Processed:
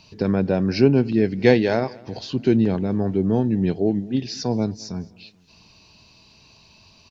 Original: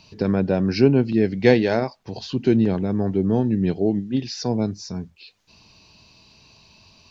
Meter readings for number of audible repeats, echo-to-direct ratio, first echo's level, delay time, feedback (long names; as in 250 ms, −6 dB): 2, −22.5 dB, −23.5 dB, 215 ms, 51%